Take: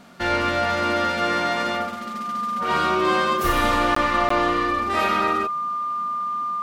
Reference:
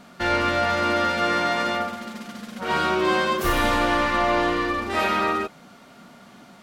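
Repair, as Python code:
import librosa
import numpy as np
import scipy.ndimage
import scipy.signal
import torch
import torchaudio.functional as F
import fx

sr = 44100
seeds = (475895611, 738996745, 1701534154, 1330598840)

y = fx.notch(x, sr, hz=1200.0, q=30.0)
y = fx.fix_interpolate(y, sr, at_s=(3.95, 4.29), length_ms=14.0)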